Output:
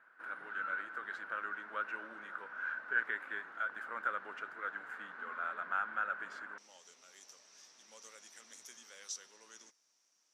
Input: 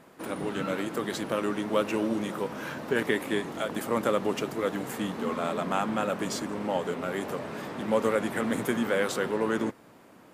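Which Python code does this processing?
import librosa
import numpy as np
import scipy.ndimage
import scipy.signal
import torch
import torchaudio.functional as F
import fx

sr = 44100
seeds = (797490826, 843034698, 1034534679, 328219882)

y = fx.bandpass_q(x, sr, hz=fx.steps((0.0, 1500.0), (6.58, 5800.0)), q=11.0)
y = y * librosa.db_to_amplitude(6.0)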